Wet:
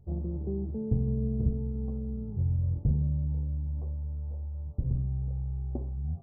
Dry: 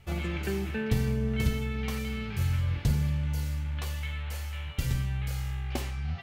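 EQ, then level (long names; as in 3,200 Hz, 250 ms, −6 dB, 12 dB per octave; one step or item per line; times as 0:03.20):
Gaussian smoothing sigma 15 samples
0.0 dB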